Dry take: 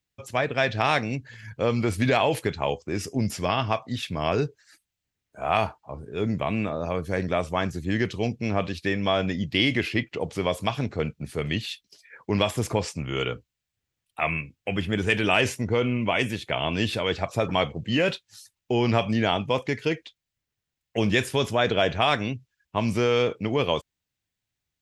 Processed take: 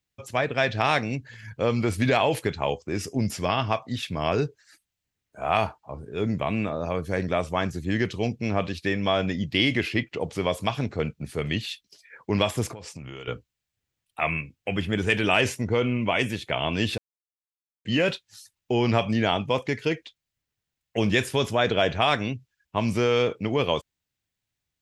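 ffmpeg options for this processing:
-filter_complex "[0:a]asettb=1/sr,asplit=3[s0][s1][s2];[s0]atrim=end=12.704[s3];[s1]atrim=start=12.7:end=13.28,asetpts=PTS-STARTPTS,afade=t=in:d=0.004:c=qsin,afade=t=out:st=0.576:d=0.004:c=qsin,acompressor=threshold=0.02:ratio=16:attack=3.2:release=140:knee=1:detection=peak[s4];[s2]atrim=start=13.276[s5];[s3][s4]acrossfade=d=0.004:c1=hsin:c2=qsin[s6];[s6][s5]acrossfade=d=0.004:c1=qsin:c2=hsin,asplit=3[s7][s8][s9];[s7]atrim=end=16.98,asetpts=PTS-STARTPTS,afade=t=out:st=16.976:d=0.004:c=hsin[s10];[s8]atrim=start=16.98:end=17.85,asetpts=PTS-STARTPTS,volume=0[s11];[s9]atrim=start=17.85,asetpts=PTS-STARTPTS,afade=t=in:d=0.004:c=hsin[s12];[s10][s11][s12]concat=n=3:v=0:a=1"

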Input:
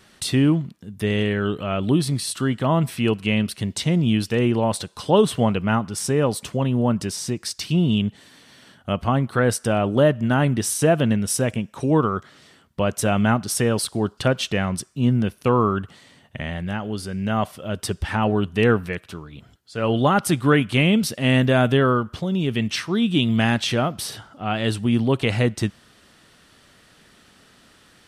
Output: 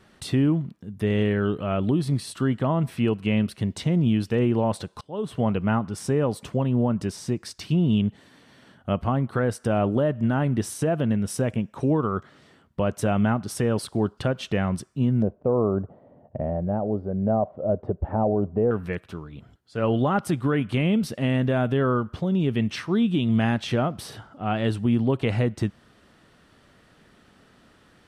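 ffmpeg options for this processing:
-filter_complex "[0:a]asettb=1/sr,asplit=3[s0][s1][s2];[s0]atrim=end=15.224[s3];[s1]atrim=start=15.22:end=18.71,asetpts=PTS-STARTPTS,afade=t=in:d=0.004:c=qsin,afade=t=out:st=3.486:d=0.004:c=qsin,lowpass=f=630:t=q:w=3.1[s4];[s2]atrim=start=18.706[s5];[s3][s4]acrossfade=d=0.004:c1=hsin:c2=qsin[s6];[s6][s5]acrossfade=d=0.004:c1=qsin:c2=hsin,asplit=2[s7][s8];[s7]atrim=end=5.01,asetpts=PTS-STARTPTS,afade=t=out:st=5.006:d=0.004:c=hsin:silence=0.0668344[s9];[s8]atrim=start=5.01,asetpts=PTS-STARTPTS,afade=t=in:d=0.46:c=qua:silence=0.0668344[s10];[s9][s10]concat=n=2:v=0:a=1,highshelf=f=2300:g=-11.5,alimiter=limit=0.211:level=0:latency=1:release=178"

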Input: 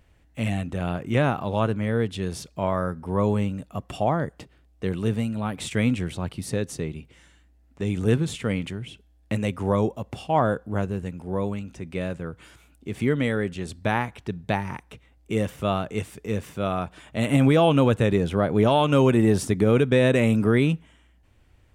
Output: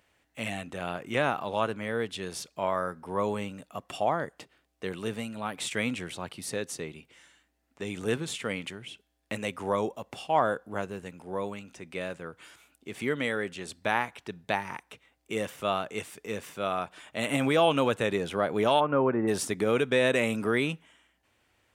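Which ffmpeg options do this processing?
-filter_complex "[0:a]asplit=3[s0][s1][s2];[s0]afade=t=out:st=18.79:d=0.02[s3];[s1]lowpass=f=1600:w=0.5412,lowpass=f=1600:w=1.3066,afade=t=in:st=18.79:d=0.02,afade=t=out:st=19.27:d=0.02[s4];[s2]afade=t=in:st=19.27:d=0.02[s5];[s3][s4][s5]amix=inputs=3:normalize=0,highpass=f=670:p=1"

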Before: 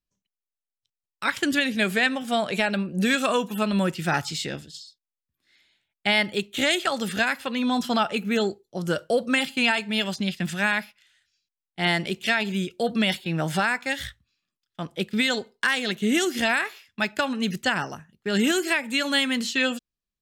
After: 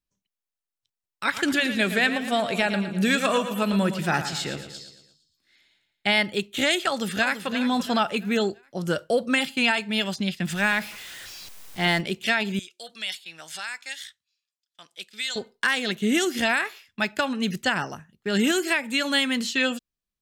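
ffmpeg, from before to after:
-filter_complex "[0:a]asplit=3[s0][s1][s2];[s0]afade=t=out:st=1.26:d=0.02[s3];[s1]aecho=1:1:114|228|342|456|570:0.299|0.149|0.0746|0.0373|0.0187,afade=t=in:st=1.26:d=0.02,afade=t=out:st=6.17:d=0.02[s4];[s2]afade=t=in:st=6.17:d=0.02[s5];[s3][s4][s5]amix=inputs=3:normalize=0,asplit=2[s6][s7];[s7]afade=t=in:st=6.87:d=0.01,afade=t=out:st=7.48:d=0.01,aecho=0:1:340|680|1020|1360:0.281838|0.112735|0.0450941|0.0180377[s8];[s6][s8]amix=inputs=2:normalize=0,asettb=1/sr,asplit=3[s9][s10][s11];[s9]atrim=end=10.504[s12];[s10]atrim=start=10.5:end=12.01,asetpts=PTS-STARTPTS,afade=t=in:d=0.004:c=qsin,afade=t=out:st=1.506:d=0.004:c=qsin,aeval=exprs='val(0)+0.5*0.0178*sgn(val(0))':c=same[s13];[s11]atrim=start=12.006[s14];[s12][s13]acrossfade=d=0.004:c1=hsin:c2=qsin[s15];[s15][s14]acrossfade=d=0.004:c1=qsin:c2=hsin,asettb=1/sr,asplit=3[s16][s17][s18];[s16]atrim=end=12.594[s19];[s17]atrim=start=12.59:end=15.36,asetpts=PTS-STARTPTS,afade=t=in:d=0.004:c=qsin,afade=t=out:st=2.766:d=0.004:c=qsin,bandpass=f=6500:t=q:w=0.74[s20];[s18]atrim=start=15.356[s21];[s19][s20]acrossfade=d=0.004:c1=hsin:c2=qsin[s22];[s22][s21]acrossfade=d=0.004:c1=qsin:c2=hsin"

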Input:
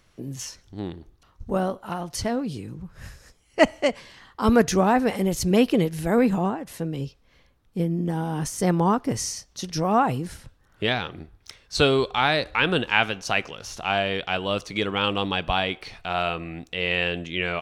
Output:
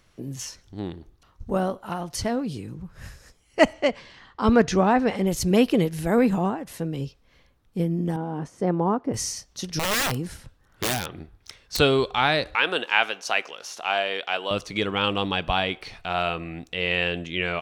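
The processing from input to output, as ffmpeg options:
-filter_complex "[0:a]asettb=1/sr,asplit=3[s0][s1][s2];[s0]atrim=end=3.734[s3];[s1]atrim=start=3.73:end=5.27,asetpts=PTS-STARTPTS,afade=t=in:d=0.004:c=qsin,afade=t=out:st=1.536:d=0.004:c=qsin,lowpass=5400[s4];[s2]atrim=start=5.266[s5];[s3][s4]acrossfade=d=0.004:c1=hsin:c2=qsin[s6];[s6][s5]acrossfade=d=0.004:c1=qsin:c2=hsin,asettb=1/sr,asplit=3[s7][s8][s9];[s7]atrim=end=8.164[s10];[s8]atrim=start=8.16:end=9.14,asetpts=PTS-STARTPTS,afade=t=in:d=0.004:c=qsin,afade=t=out:st=0.976:d=0.004:c=qsin,bandpass=f=430:t=q:w=0.58[s11];[s9]atrim=start=9.136[s12];[s10][s11]acrossfade=d=0.004:c1=hsin:c2=qsin[s13];[s13][s12]acrossfade=d=0.004:c1=qsin:c2=hsin,asettb=1/sr,asplit=3[s14][s15][s16];[s14]atrim=end=9.794[s17];[s15]atrim=start=9.79:end=11.79,asetpts=PTS-STARTPTS,afade=t=in:d=0.004:c=qsin,afade=t=out:st=1.996:d=0.004:c=qsin,aeval=exprs='(mod(8.41*val(0)+1,2)-1)/8.41':c=same[s18];[s16]atrim=start=11.786[s19];[s17][s18]acrossfade=d=0.004:c1=hsin:c2=qsin[s20];[s20][s19]acrossfade=d=0.004:c1=qsin:c2=hsin,asettb=1/sr,asplit=3[s21][s22][s23];[s21]atrim=end=12.554[s24];[s22]atrim=start=12.55:end=14.51,asetpts=PTS-STARTPTS,afade=t=in:d=0.004:c=qsin,afade=t=out:st=1.956:d=0.004:c=qsin,highpass=440[s25];[s23]atrim=start=14.506[s26];[s24][s25]acrossfade=d=0.004:c1=hsin:c2=qsin[s27];[s27][s26]acrossfade=d=0.004:c1=qsin:c2=hsin"

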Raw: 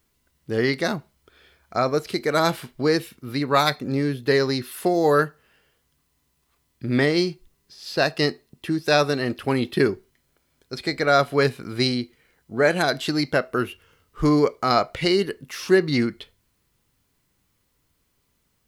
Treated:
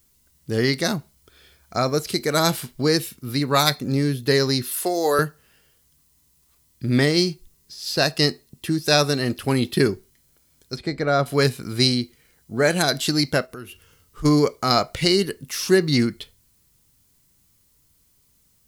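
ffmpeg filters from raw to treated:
-filter_complex "[0:a]asettb=1/sr,asplit=3[s0][s1][s2];[s0]atrim=end=4.744[s3];[s1]atrim=start=4.74:end=5.19,asetpts=PTS-STARTPTS,afade=t=in:d=0.004:c=qsin,afade=t=out:st=0.446:d=0.004:c=qsin,highpass=380[s4];[s2]atrim=start=5.186[s5];[s3][s4]acrossfade=d=0.004:c1=hsin:c2=qsin[s6];[s6][s5]acrossfade=d=0.004:c1=qsin:c2=hsin,asettb=1/sr,asplit=3[s7][s8][s9];[s7]atrim=end=10.764[s10];[s8]atrim=start=10.76:end=11.26,asetpts=PTS-STARTPTS,afade=t=in:d=0.004:c=qsin,afade=t=out:st=0.496:d=0.004:c=qsin,lowpass=f=1200:p=1[s11];[s9]atrim=start=11.256[s12];[s10][s11]acrossfade=d=0.004:c1=hsin:c2=qsin[s13];[s13][s12]acrossfade=d=0.004:c1=qsin:c2=hsin,asplit=3[s14][s15][s16];[s14]afade=t=out:st=13.45:d=0.02[s17];[s15]acompressor=threshold=0.01:ratio=2.5:attack=3.2:release=140:knee=1:detection=peak,afade=t=in:st=13.45:d=0.02,afade=t=out:st=14.24:d=0.02[s18];[s16]afade=t=in:st=14.24:d=0.02[s19];[s17][s18][s19]amix=inputs=3:normalize=0,bass=f=250:g=6,treble=f=4000:g=12,volume=0.891"

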